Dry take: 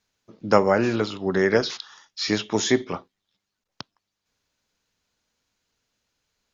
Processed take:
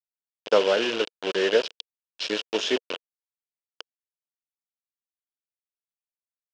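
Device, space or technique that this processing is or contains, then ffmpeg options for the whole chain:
hand-held game console: -af "acrusher=bits=3:mix=0:aa=0.000001,highpass=460,equalizer=frequency=470:width_type=q:width=4:gain=5,equalizer=frequency=810:width_type=q:width=4:gain=-9,equalizer=frequency=1200:width_type=q:width=4:gain=-8,equalizer=frequency=2000:width_type=q:width=4:gain=-9,equalizer=frequency=2900:width_type=q:width=4:gain=8,equalizer=frequency=4200:width_type=q:width=4:gain=-4,lowpass=frequency=4900:width=0.5412,lowpass=frequency=4900:width=1.3066"

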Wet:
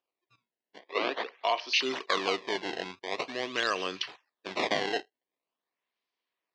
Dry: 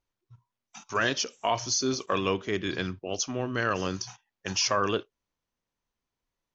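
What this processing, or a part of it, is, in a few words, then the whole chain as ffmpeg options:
circuit-bent sampling toy: -filter_complex "[0:a]acrusher=samples=21:mix=1:aa=0.000001:lfo=1:lforange=33.6:lforate=0.45,highpass=550,equalizer=frequency=560:width_type=q:width=4:gain=-5,equalizer=frequency=860:width_type=q:width=4:gain=-7,equalizer=frequency=1400:width_type=q:width=4:gain=-9,lowpass=frequency=4800:width=0.5412,lowpass=frequency=4800:width=1.3066,asettb=1/sr,asplit=3[link_01][link_02][link_03];[link_01]atrim=end=0.794[link_04];[link_02]atrim=start=0.79:end=1.74,asetpts=PTS-STARTPTS,afade=type=in:duration=0.004:curve=qsin,afade=type=out:start_time=0.946:duration=0.004:curve=qsin,acrossover=split=230 4400:gain=0.0631 1 0.0708[link_05][link_06][link_07];[link_05][link_06][link_07]amix=inputs=3:normalize=0[link_08];[link_03]atrim=start=1.736[link_09];[link_04][link_08]acrossfade=duration=0.004:curve1=hsin:curve2=qsin[link_10];[link_10][link_09]acrossfade=duration=0.004:curve1=qsin:curve2=hsin,volume=4.5dB"

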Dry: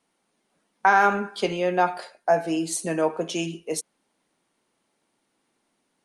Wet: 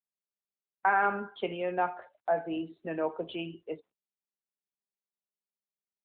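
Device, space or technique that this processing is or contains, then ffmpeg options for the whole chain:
mobile call with aggressive noise cancelling: -af "highpass=frequency=180:poles=1,afftdn=noise_reduction=33:noise_floor=-41,volume=-7dB" -ar 8000 -c:a libopencore_amrnb -b:a 12200

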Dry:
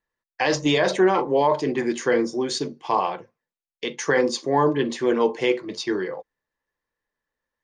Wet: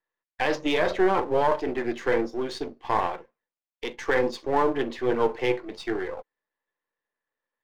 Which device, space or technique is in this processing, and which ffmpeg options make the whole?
crystal radio: -af "highpass=280,lowpass=3100,aeval=exprs='if(lt(val(0),0),0.447*val(0),val(0))':channel_layout=same"

